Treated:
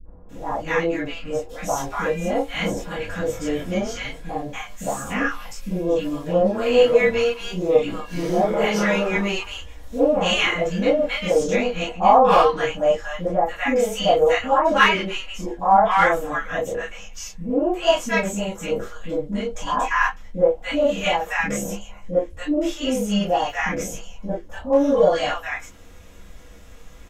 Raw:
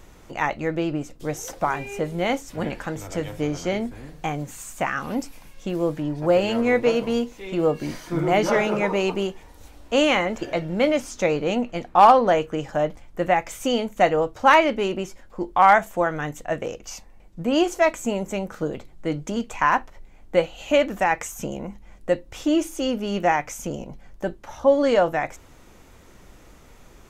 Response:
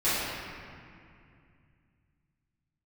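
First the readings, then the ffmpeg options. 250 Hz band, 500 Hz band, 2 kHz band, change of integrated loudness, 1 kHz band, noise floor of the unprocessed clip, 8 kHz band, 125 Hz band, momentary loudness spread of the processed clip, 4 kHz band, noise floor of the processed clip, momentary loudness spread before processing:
+0.5 dB, +2.5 dB, +3.0 dB, +1.5 dB, +0.5 dB, -49 dBFS, +2.5 dB, 0.0 dB, 14 LU, +4.5 dB, -41 dBFS, 14 LU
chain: -filter_complex "[0:a]acrossover=split=330|1000[s0][s1][s2];[s1]adelay=50[s3];[s2]adelay=290[s4];[s0][s3][s4]amix=inputs=3:normalize=0[s5];[1:a]atrim=start_sample=2205,atrim=end_sample=3969,asetrate=66150,aresample=44100[s6];[s5][s6]afir=irnorm=-1:irlink=0,volume=0.668"

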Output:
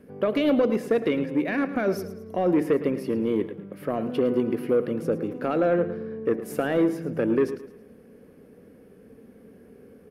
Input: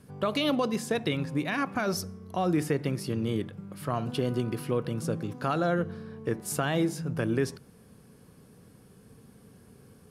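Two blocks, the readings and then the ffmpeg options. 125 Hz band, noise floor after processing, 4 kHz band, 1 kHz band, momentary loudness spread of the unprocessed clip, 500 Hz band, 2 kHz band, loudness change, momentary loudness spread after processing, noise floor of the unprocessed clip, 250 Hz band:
-4.5 dB, -52 dBFS, -5.5 dB, 0.0 dB, 7 LU, +7.5 dB, +1.0 dB, +4.5 dB, 7 LU, -56 dBFS, +5.5 dB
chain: -filter_complex "[0:a]equalizer=f=125:t=o:w=1:g=-9,equalizer=f=250:t=o:w=1:g=7,equalizer=f=500:t=o:w=1:g=10,equalizer=f=1000:t=o:w=1:g=-6,equalizer=f=2000:t=o:w=1:g=6,equalizer=f=4000:t=o:w=1:g=-7,equalizer=f=8000:t=o:w=1:g=-12,asoftclip=type=tanh:threshold=0.211,asplit=2[s0][s1];[s1]aecho=0:1:109|218|327|436:0.211|0.0803|0.0305|0.0116[s2];[s0][s2]amix=inputs=2:normalize=0"

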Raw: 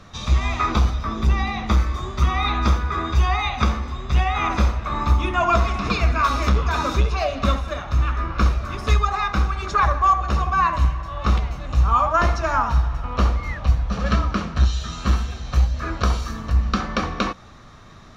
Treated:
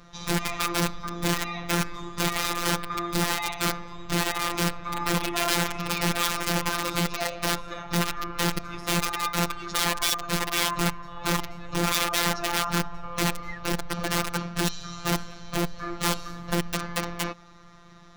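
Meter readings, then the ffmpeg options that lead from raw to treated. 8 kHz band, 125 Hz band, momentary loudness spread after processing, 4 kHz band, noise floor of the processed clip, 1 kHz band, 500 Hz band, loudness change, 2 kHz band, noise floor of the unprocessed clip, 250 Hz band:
no reading, -11.5 dB, 6 LU, +3.5 dB, -49 dBFS, -8.0 dB, -3.5 dB, -5.5 dB, -1.0 dB, -43 dBFS, -2.0 dB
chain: -af "aeval=exprs='(mod(5.31*val(0)+1,2)-1)/5.31':c=same,afftfilt=real='hypot(re,im)*cos(PI*b)':imag='0':win_size=1024:overlap=0.75,volume=0.794"

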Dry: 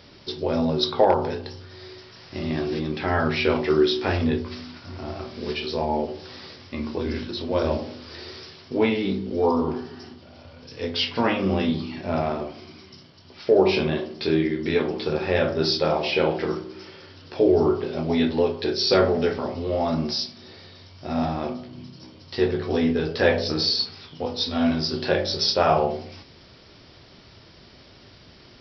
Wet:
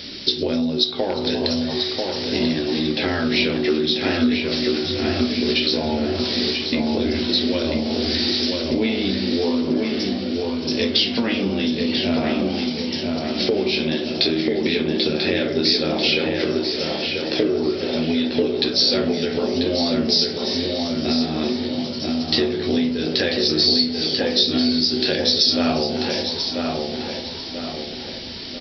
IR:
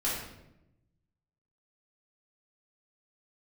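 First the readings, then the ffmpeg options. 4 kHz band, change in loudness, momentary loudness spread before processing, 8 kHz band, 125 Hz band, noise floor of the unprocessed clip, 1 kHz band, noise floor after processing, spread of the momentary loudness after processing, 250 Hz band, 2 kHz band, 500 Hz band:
+9.5 dB, +3.5 dB, 18 LU, no reading, 0.0 dB, -50 dBFS, -3.5 dB, -30 dBFS, 7 LU, +5.5 dB, +4.0 dB, +0.5 dB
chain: -filter_complex "[0:a]equalizer=f=125:t=o:w=1:g=-6,equalizer=f=250:t=o:w=1:g=9,equalizer=f=1000:t=o:w=1:g=-8,equalizer=f=2000:t=o:w=1:g=3,equalizer=f=4000:t=o:w=1:g=9,asplit=2[s0][s1];[s1]asplit=3[s2][s3][s4];[s2]adelay=345,afreqshift=130,volume=0.0944[s5];[s3]adelay=690,afreqshift=260,volume=0.0313[s6];[s4]adelay=1035,afreqshift=390,volume=0.0102[s7];[s5][s6][s7]amix=inputs=3:normalize=0[s8];[s0][s8]amix=inputs=2:normalize=0,acompressor=threshold=0.0447:ratio=10,highshelf=f=3600:g=6.5,asplit=2[s9][s10];[s10]adelay=990,lowpass=f=2900:p=1,volume=0.708,asplit=2[s11][s12];[s12]adelay=990,lowpass=f=2900:p=1,volume=0.48,asplit=2[s13][s14];[s14]adelay=990,lowpass=f=2900:p=1,volume=0.48,asplit=2[s15][s16];[s16]adelay=990,lowpass=f=2900:p=1,volume=0.48,asplit=2[s17][s18];[s18]adelay=990,lowpass=f=2900:p=1,volume=0.48,asplit=2[s19][s20];[s20]adelay=990,lowpass=f=2900:p=1,volume=0.48[s21];[s11][s13][s15][s17][s19][s21]amix=inputs=6:normalize=0[s22];[s9][s22]amix=inputs=2:normalize=0,volume=2.51"

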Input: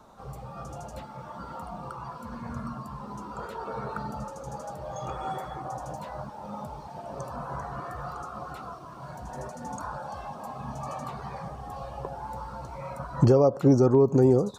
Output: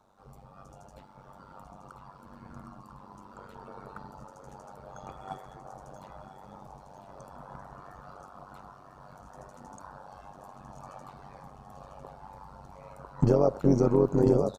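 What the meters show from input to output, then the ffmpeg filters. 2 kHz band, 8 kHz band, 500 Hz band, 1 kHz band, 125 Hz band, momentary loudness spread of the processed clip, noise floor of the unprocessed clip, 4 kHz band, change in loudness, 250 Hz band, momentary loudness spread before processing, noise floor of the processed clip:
-8.5 dB, -7.0 dB, -3.5 dB, -8.0 dB, -4.5 dB, 20 LU, -43 dBFS, -7.5 dB, +4.5 dB, -3.5 dB, 20 LU, -53 dBFS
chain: -af "aecho=1:1:999|1998|2997|3996|4995|5994:0.447|0.228|0.116|0.0593|0.0302|0.0154,tremolo=f=96:d=0.824,agate=range=0.398:threshold=0.02:ratio=16:detection=peak"

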